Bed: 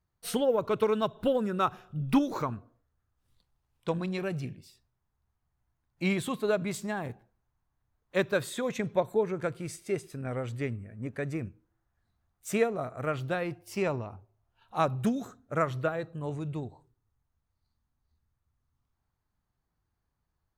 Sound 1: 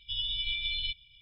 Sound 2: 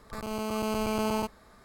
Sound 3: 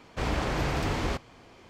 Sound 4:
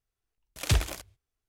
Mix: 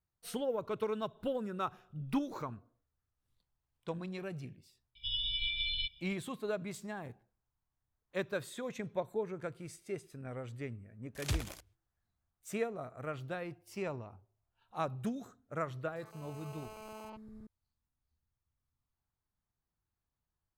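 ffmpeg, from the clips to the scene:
-filter_complex "[0:a]volume=0.355[s0];[2:a]acrossover=split=330|4100[s1][s2][s3];[s2]adelay=70[s4];[s1]adelay=710[s5];[s5][s4][s3]amix=inputs=3:normalize=0[s6];[1:a]atrim=end=1.21,asetpts=PTS-STARTPTS,volume=0.75,afade=t=in:d=0.004:c=hsin,afade=t=out:st=1.206:d=0.004:c=hsin,adelay=4950[s7];[4:a]atrim=end=1.48,asetpts=PTS-STARTPTS,volume=0.316,afade=t=in:d=0.004:c=hsin,afade=t=out:st=1.476:d=0.004:c=hsin,adelay=10590[s8];[s6]atrim=end=1.64,asetpts=PTS-STARTPTS,volume=0.141,afade=t=in:d=0.004:c=hsin,afade=t=out:st=1.636:d=0.004:c=hsin,adelay=15830[s9];[s0][s7][s8][s9]amix=inputs=4:normalize=0"

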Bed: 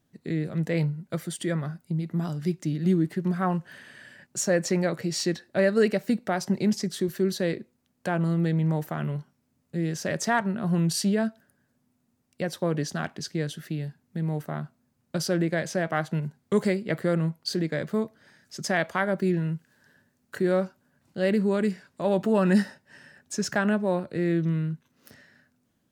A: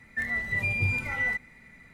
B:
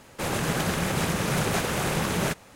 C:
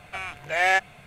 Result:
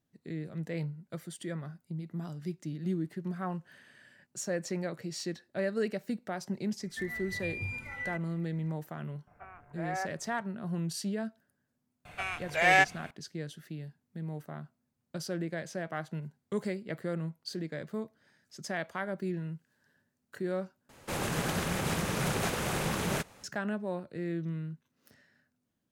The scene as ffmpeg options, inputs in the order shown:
-filter_complex "[3:a]asplit=2[s0][s1];[0:a]volume=0.316[s2];[s0]lowpass=f=1500:w=0.5412,lowpass=f=1500:w=1.3066[s3];[s2]asplit=2[s4][s5];[s4]atrim=end=20.894[s6];[2:a]atrim=end=2.55,asetpts=PTS-STARTPTS,volume=0.531[s7];[s5]atrim=start=23.436[s8];[1:a]atrim=end=1.93,asetpts=PTS-STARTPTS,volume=0.299,afade=t=in:d=0.004:c=hsin,afade=t=out:st=1.926:d=0.004:c=hsin,adelay=6800[s9];[s3]atrim=end=1.06,asetpts=PTS-STARTPTS,volume=0.251,afade=t=in:d=0.004:c=hsin,afade=t=out:st=1.056:d=0.004:c=hsin,adelay=9270[s10];[s1]atrim=end=1.06,asetpts=PTS-STARTPTS,volume=0.794,afade=t=in:d=0.004:c=hsin,afade=t=out:st=1.056:d=0.004:c=hsin,adelay=12050[s11];[s6][s7]acrossfade=d=0.004:c1=hsin:c2=hsin[s12];[s12][s8]acrossfade=d=0.004:c1=hsin:c2=hsin[s13];[s13][s9][s10][s11]amix=inputs=4:normalize=0"

